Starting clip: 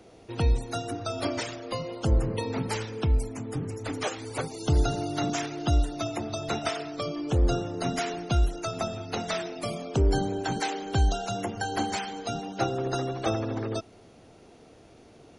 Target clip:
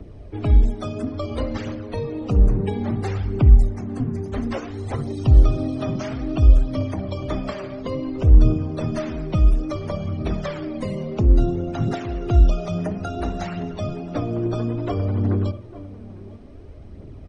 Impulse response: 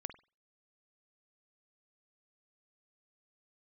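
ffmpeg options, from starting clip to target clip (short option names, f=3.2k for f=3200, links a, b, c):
-filter_complex "[0:a]asplit=2[a][b];[b]adelay=758,volume=-19dB,highshelf=f=4k:g=-17.1[c];[a][c]amix=inputs=2:normalize=0,asplit=2[d][e];[1:a]atrim=start_sample=2205[f];[e][f]afir=irnorm=-1:irlink=0,volume=9.5dB[g];[d][g]amix=inputs=2:normalize=0,acrossover=split=150[h][i];[i]acompressor=threshold=-18dB:ratio=6[j];[h][j]amix=inputs=2:normalize=0,lowshelf=f=470:g=8.5,acrossover=split=100|1200[k][l][m];[k]acompressor=mode=upward:threshold=-23dB:ratio=2.5[n];[n][l][m]amix=inputs=3:normalize=0,highshelf=f=3.9k:g=-10.5,aphaser=in_gain=1:out_gain=1:delay=5:decay=0.38:speed=0.66:type=triangular,asetrate=39249,aresample=44100,volume=-9dB"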